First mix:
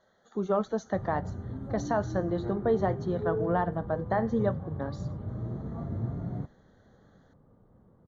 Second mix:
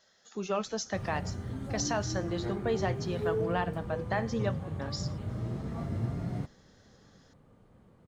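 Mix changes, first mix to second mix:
speech -5.5 dB; master: remove running mean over 17 samples

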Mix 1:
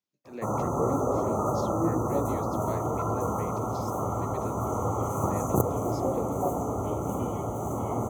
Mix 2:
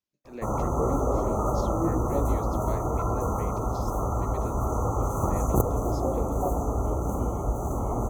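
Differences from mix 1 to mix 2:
second sound: add bell 3000 Hz -11 dB 2.4 oct; master: remove HPF 94 Hz 24 dB/oct

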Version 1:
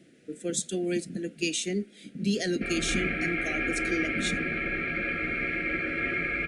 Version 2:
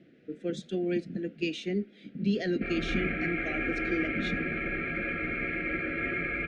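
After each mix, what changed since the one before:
master: add air absorption 280 m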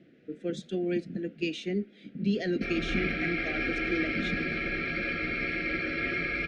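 background: remove LPF 2500 Hz 24 dB/oct

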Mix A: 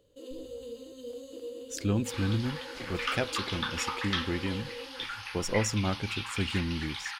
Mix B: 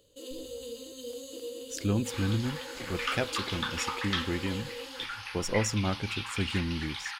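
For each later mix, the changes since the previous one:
first sound: add high shelf 2400 Hz +12 dB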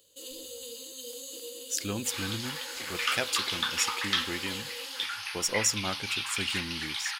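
first sound: send off; master: add tilt +3 dB/oct

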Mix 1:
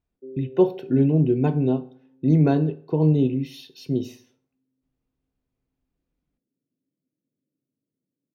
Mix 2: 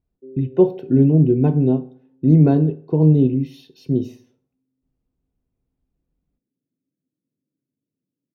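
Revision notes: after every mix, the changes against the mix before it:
background -4.0 dB; master: add tilt shelf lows +6 dB, about 780 Hz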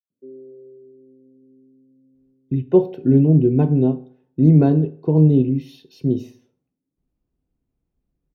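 speech: entry +2.15 s

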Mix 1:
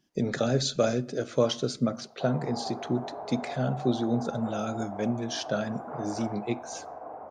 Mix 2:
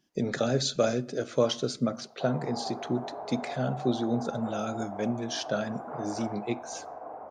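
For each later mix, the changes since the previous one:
master: add low shelf 170 Hz -4 dB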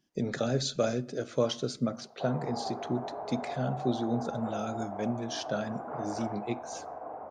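speech -3.5 dB; master: add low shelf 170 Hz +4 dB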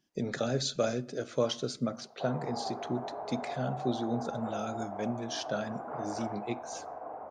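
master: add low shelf 430 Hz -3 dB

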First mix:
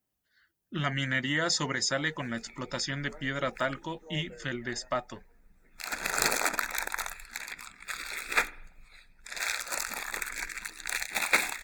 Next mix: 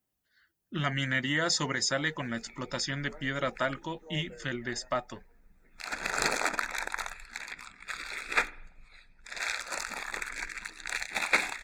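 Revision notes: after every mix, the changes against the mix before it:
background: add air absorption 55 m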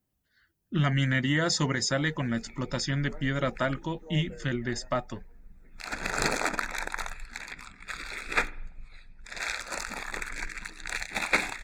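master: add low shelf 290 Hz +10.5 dB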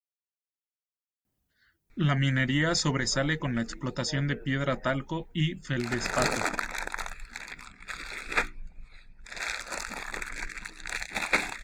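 speech: entry +1.25 s; reverb: off

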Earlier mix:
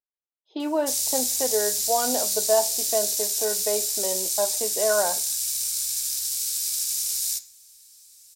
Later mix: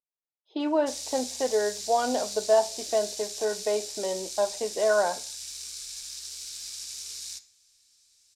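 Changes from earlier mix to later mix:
background -4.5 dB; master: add LPF 5300 Hz 12 dB/oct

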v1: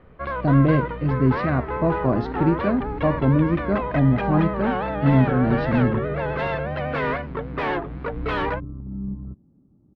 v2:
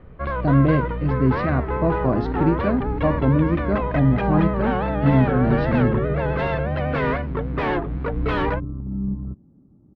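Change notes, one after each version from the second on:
first sound: add low shelf 270 Hz +8.5 dB; second sound +4.5 dB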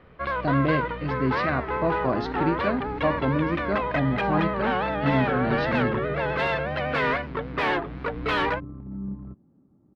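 master: add tilt +3 dB/oct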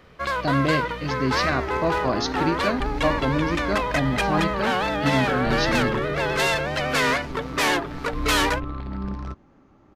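second sound: remove band-pass 180 Hz, Q 1.4; master: remove air absorption 390 m

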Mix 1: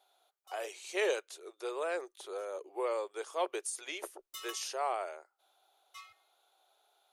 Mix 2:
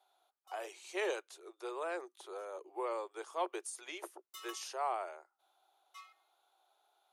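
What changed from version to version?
master: add rippled Chebyshev high-pass 240 Hz, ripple 6 dB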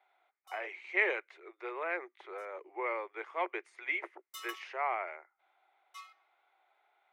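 speech: add synth low-pass 2100 Hz, resonance Q 8.5; background +4.0 dB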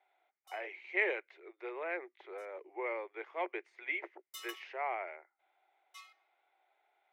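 speech: add air absorption 130 m; master: add bell 1200 Hz -7.5 dB 0.7 oct

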